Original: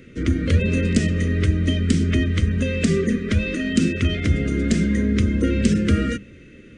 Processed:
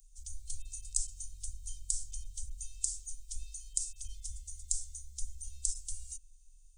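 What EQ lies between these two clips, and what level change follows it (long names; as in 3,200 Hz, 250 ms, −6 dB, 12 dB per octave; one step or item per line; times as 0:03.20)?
inverse Chebyshev band-stop filter 120–1,900 Hz, stop band 70 dB
+5.5 dB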